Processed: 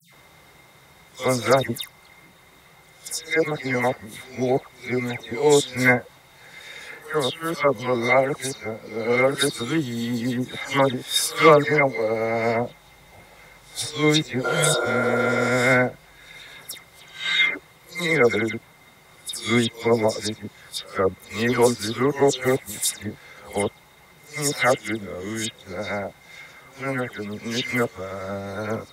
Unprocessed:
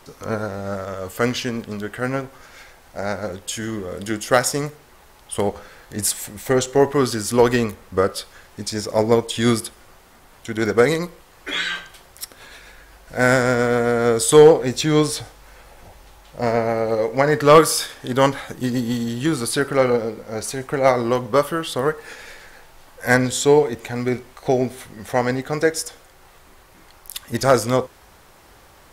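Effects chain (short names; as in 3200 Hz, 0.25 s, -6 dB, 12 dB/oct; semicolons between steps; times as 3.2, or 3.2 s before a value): whole clip reversed; HPF 75 Hz; small resonant body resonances 2100/3700 Hz, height 17 dB, ringing for 55 ms; dispersion lows, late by 0.134 s, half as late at 2500 Hz; band noise 120–180 Hz -59 dBFS; spectral repair 14.47–15.47, 260–1500 Hz after; gain -3 dB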